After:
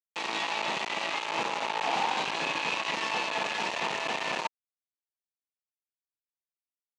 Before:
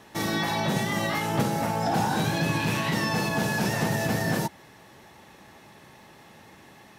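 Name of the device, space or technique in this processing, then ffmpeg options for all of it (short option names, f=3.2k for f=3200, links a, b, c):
hand-held game console: -af "acrusher=bits=3:mix=0:aa=0.000001,highpass=430,equalizer=f=960:t=q:w=4:g=7,equalizer=f=1.5k:t=q:w=4:g=-4,equalizer=f=2.6k:t=q:w=4:g=7,equalizer=f=5.3k:t=q:w=4:g=-6,lowpass=f=5.8k:w=0.5412,lowpass=f=5.8k:w=1.3066,volume=-5dB"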